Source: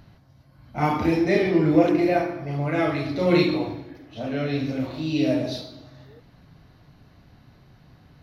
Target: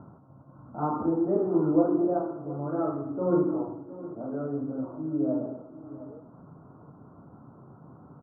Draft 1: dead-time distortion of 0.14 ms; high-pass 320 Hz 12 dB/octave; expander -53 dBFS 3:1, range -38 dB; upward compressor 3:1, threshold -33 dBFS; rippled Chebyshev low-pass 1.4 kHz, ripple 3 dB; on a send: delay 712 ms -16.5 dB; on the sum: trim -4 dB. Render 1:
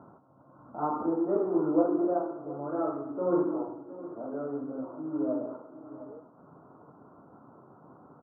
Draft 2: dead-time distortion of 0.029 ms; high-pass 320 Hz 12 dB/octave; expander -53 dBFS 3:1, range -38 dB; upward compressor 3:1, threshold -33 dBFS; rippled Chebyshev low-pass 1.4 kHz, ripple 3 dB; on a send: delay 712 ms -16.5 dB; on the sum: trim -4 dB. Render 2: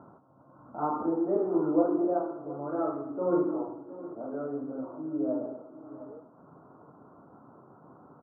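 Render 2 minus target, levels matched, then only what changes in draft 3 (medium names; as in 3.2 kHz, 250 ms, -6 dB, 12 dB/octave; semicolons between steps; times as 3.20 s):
125 Hz band -7.5 dB
change: high-pass 150 Hz 12 dB/octave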